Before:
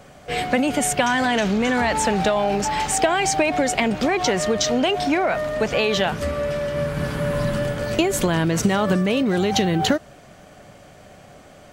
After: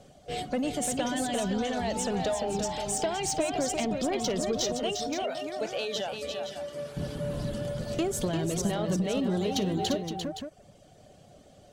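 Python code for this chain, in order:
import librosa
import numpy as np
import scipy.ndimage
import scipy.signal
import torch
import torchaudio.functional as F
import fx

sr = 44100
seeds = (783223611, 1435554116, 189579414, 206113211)

y = fx.highpass(x, sr, hz=550.0, slope=6, at=(4.72, 6.97))
y = fx.dereverb_blind(y, sr, rt60_s=1.1)
y = scipy.signal.sosfilt(scipy.signal.butter(2, 12000.0, 'lowpass', fs=sr, output='sos'), y)
y = fx.band_shelf(y, sr, hz=1500.0, db=-9.5, octaves=1.7)
y = 10.0 ** (-15.0 / 20.0) * np.tanh(y / 10.0 ** (-15.0 / 20.0))
y = fx.echo_multitap(y, sr, ms=(54, 347, 518), db=(-19.5, -6.0, -9.5))
y = y * 10.0 ** (-6.5 / 20.0)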